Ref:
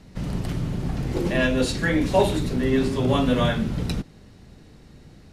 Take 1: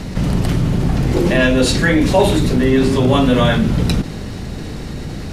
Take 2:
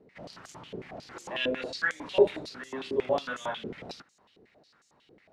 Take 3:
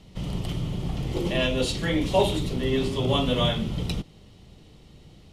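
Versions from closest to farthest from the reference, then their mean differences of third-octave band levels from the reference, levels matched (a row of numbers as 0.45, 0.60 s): 3, 1, 2; 1.5, 4.5, 9.0 dB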